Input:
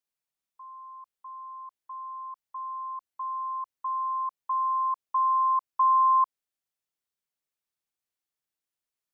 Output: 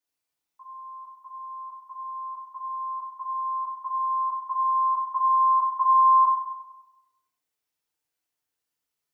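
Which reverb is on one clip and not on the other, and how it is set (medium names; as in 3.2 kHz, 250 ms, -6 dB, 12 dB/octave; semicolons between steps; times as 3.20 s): FDN reverb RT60 1 s, low-frequency decay 0.7×, high-frequency decay 0.75×, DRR -5.5 dB; trim -1 dB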